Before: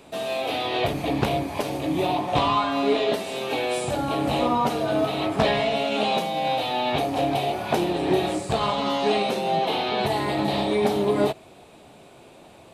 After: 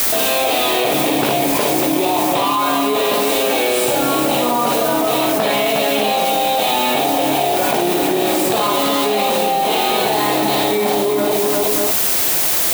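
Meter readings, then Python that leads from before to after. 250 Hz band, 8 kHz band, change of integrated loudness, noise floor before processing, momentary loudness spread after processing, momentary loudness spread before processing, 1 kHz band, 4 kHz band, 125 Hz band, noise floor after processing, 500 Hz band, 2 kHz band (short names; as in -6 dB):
+6.5 dB, +20.5 dB, +8.5 dB, -49 dBFS, 2 LU, 4 LU, +7.5 dB, +9.5 dB, 0.0 dB, -17 dBFS, +7.0 dB, +9.0 dB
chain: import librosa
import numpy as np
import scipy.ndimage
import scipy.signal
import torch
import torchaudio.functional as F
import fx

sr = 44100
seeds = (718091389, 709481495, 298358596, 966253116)

y = scipy.signal.sosfilt(scipy.signal.butter(2, 240.0, 'highpass', fs=sr, output='sos'), x)
y = fx.echo_multitap(y, sr, ms=(57, 360, 595), db=(-3.5, -7.0, -11.5))
y = fx.quant_dither(y, sr, seeds[0], bits=6, dither='triangular')
y = fx.high_shelf(y, sr, hz=11000.0, db=7.0)
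y = fx.env_flatten(y, sr, amount_pct=100)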